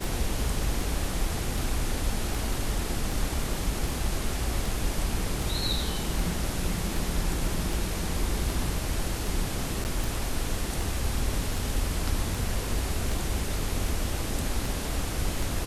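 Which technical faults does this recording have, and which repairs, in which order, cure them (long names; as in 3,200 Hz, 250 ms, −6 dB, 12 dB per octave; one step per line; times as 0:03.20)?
scratch tick 78 rpm
0:09.84–0:09.85: drop-out 9.8 ms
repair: click removal
repair the gap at 0:09.84, 9.8 ms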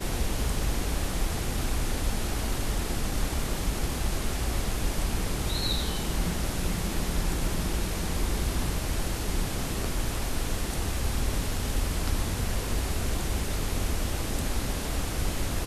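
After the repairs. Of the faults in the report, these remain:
none of them is left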